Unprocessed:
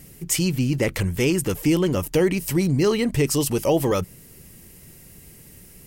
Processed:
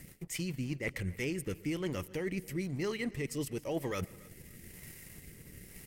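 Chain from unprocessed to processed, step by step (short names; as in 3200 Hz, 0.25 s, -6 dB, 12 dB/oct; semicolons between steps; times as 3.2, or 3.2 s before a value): bell 2000 Hz +9.5 dB 0.51 oct; reverse; compressor 6:1, threshold -32 dBFS, peak gain reduction 16 dB; reverse; crossover distortion -55 dBFS; transient shaper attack +1 dB, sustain -6 dB; rotary speaker horn 7 Hz, later 1 Hz, at 0.47; feedback echo 0.279 s, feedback 31%, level -23 dB; on a send at -22 dB: reverb RT60 0.60 s, pre-delay 0.113 s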